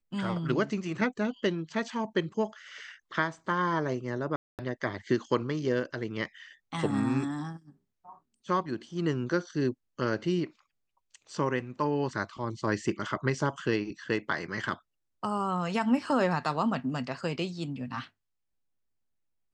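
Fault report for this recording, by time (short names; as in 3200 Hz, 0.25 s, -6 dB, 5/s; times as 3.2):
4.36–4.59 gap 0.228 s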